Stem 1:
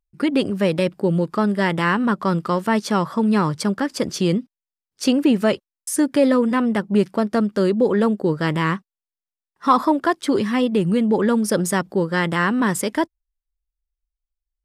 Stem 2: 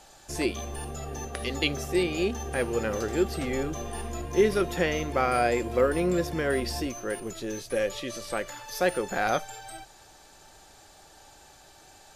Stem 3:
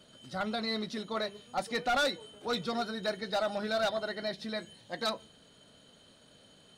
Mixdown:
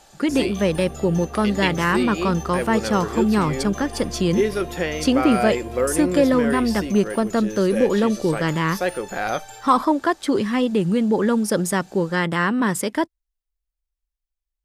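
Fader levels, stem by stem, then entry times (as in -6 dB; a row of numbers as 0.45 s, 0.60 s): -1.0 dB, +1.5 dB, mute; 0.00 s, 0.00 s, mute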